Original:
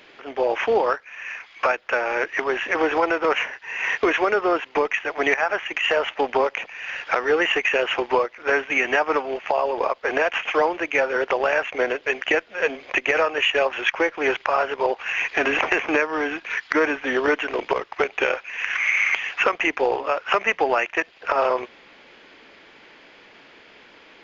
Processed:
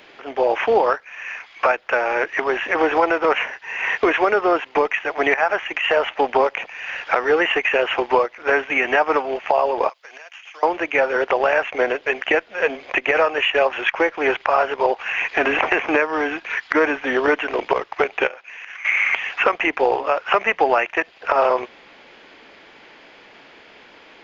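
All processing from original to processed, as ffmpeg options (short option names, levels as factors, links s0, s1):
-filter_complex "[0:a]asettb=1/sr,asplit=3[s0][s1][s2];[s0]atrim=end=9.894[s3];[s1]atrim=start=9.89:end=10.63,asetpts=PTS-STARTPTS,afade=t=in:d=0.004:c=qsin,afade=t=out:st=0.736:d=0.004:c=qsin,aderivative,acompressor=threshold=0.0112:ratio=5:attack=3.2:release=140:knee=1:detection=peak[s4];[s2]atrim=start=10.626[s5];[s3][s4]acrossfade=d=0.004:c1=hsin:c2=qsin[s6];[s6][s5]acrossfade=d=0.004:c1=qsin:c2=hsin,asettb=1/sr,asplit=3[s7][s8][s9];[s7]atrim=end=18.274[s10];[s8]atrim=start=18.27:end=18.85,asetpts=PTS-STARTPTS,afade=t=in:d=0.004:c=qsin,afade=t=out:st=0.576:d=0.004:c=qsin,agate=range=0.398:threshold=0.0126:ratio=16:release=100:detection=peak,lowshelf=f=110:g=-8,acompressor=threshold=0.0141:ratio=4:attack=3.2:release=140:knee=1:detection=peak[s11];[s9]atrim=start=18.846[s12];[s10][s11]acrossfade=d=0.004:c1=hsin:c2=qsin[s13];[s13][s12]acrossfade=d=0.004:c1=qsin:c2=hsin,acrossover=split=3800[s14][s15];[s15]acompressor=threshold=0.00501:ratio=4:attack=1:release=60[s16];[s14][s16]amix=inputs=2:normalize=0,equalizer=f=760:t=o:w=0.77:g=3,volume=1.26"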